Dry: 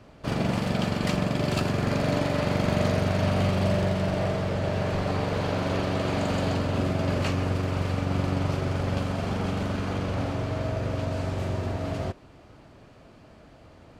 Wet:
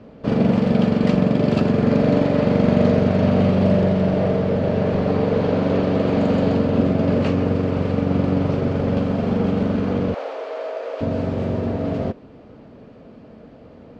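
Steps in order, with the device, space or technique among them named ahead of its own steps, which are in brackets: inside a cardboard box (low-pass 4.4 kHz 12 dB/octave; small resonant body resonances 230/450 Hz, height 13 dB, ringing for 25 ms); 10.14–11.01 s: inverse Chebyshev high-pass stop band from 190 Hz, stop band 50 dB

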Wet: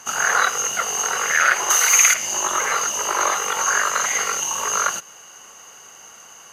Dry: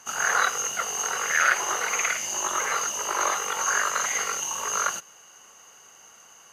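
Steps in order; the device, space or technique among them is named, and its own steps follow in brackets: 1.70–2.14 s: tilt EQ +4 dB/octave; parallel compression (in parallel at -3 dB: compression, threshold -31 dBFS, peak gain reduction 16 dB); on the sum: trim +3 dB

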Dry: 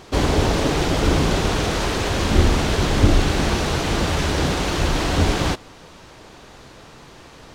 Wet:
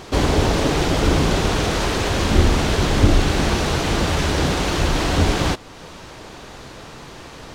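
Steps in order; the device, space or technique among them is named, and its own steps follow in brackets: parallel compression (in parallel at -1 dB: compression, threshold -35 dBFS, peak gain reduction 24.5 dB)

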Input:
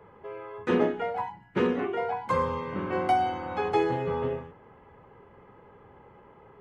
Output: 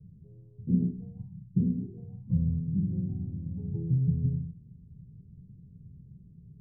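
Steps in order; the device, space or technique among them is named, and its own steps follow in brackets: 3.01–3.56 s: band-stop 730 Hz, Q 12; the neighbour's flat through the wall (low-pass 170 Hz 24 dB/octave; peaking EQ 160 Hz +7 dB 0.72 oct); trim +8 dB

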